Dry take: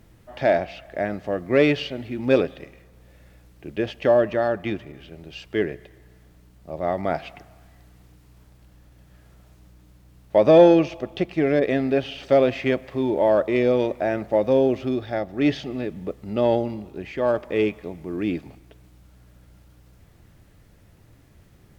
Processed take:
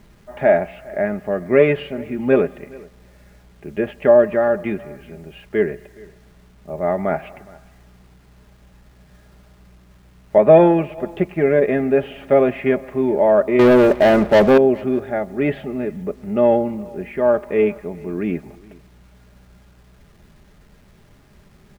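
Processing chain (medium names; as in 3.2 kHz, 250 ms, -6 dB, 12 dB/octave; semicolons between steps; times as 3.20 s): low-pass 2.3 kHz 24 dB/octave; comb 4.9 ms, depth 54%; 13.59–14.58 s: waveshaping leveller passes 3; word length cut 10-bit, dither none; delay 418 ms -23.5 dB; 10.38–10.98 s: three bands expanded up and down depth 40%; trim +3 dB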